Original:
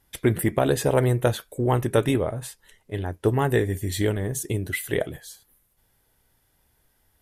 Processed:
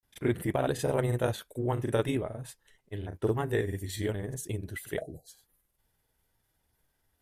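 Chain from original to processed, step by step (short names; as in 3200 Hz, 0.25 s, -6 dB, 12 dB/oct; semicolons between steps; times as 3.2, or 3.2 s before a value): grains, spray 33 ms, pitch spread up and down by 0 st; spectral delete 5.01–5.28, 820–3900 Hz; gain -7 dB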